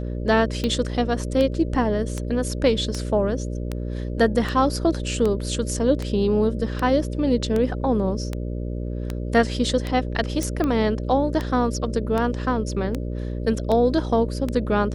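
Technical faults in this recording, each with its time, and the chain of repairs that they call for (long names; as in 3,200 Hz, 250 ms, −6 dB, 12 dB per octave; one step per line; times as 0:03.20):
mains buzz 60 Hz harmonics 10 −28 dBFS
scratch tick 78 rpm −13 dBFS
0:10.43: click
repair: click removal
hum removal 60 Hz, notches 10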